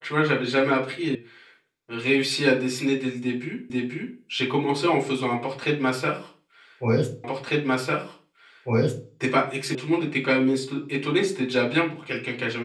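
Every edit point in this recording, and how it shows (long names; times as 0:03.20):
0:01.15: cut off before it has died away
0:03.70: the same again, the last 0.49 s
0:07.24: the same again, the last 1.85 s
0:09.75: cut off before it has died away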